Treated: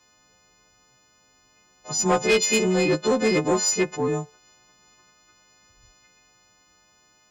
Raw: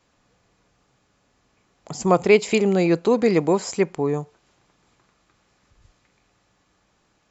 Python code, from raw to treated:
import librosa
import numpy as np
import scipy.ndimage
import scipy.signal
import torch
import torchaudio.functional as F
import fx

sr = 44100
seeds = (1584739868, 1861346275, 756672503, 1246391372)

y = fx.freq_snap(x, sr, grid_st=3)
y = 10.0 ** (-13.5 / 20.0) * np.tanh(y / 10.0 ** (-13.5 / 20.0))
y = fx.cheby_harmonics(y, sr, harmonics=(6,), levels_db=(-43,), full_scale_db=-13.5)